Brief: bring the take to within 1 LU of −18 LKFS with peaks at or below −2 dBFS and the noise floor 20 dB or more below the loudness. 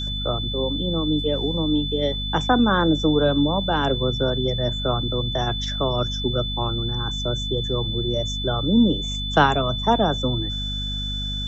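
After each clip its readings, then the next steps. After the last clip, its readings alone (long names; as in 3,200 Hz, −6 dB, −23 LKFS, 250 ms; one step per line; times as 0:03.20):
mains hum 50 Hz; hum harmonics up to 250 Hz; level of the hum −27 dBFS; interfering tone 3,500 Hz; level of the tone −28 dBFS; integrated loudness −22.0 LKFS; sample peak −3.0 dBFS; target loudness −18.0 LKFS
→ mains-hum notches 50/100/150/200/250 Hz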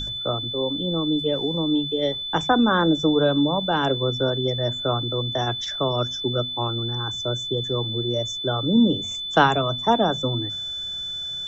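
mains hum none found; interfering tone 3,500 Hz; level of the tone −28 dBFS
→ notch filter 3,500 Hz, Q 30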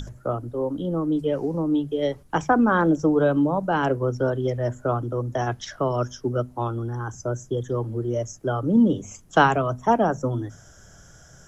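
interfering tone none found; integrated loudness −24.0 LKFS; sample peak −3.5 dBFS; target loudness −18.0 LKFS
→ level +6 dB
brickwall limiter −2 dBFS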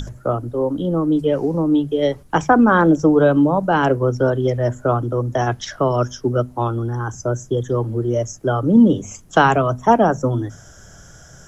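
integrated loudness −18.0 LKFS; sample peak −2.0 dBFS; background noise floor −44 dBFS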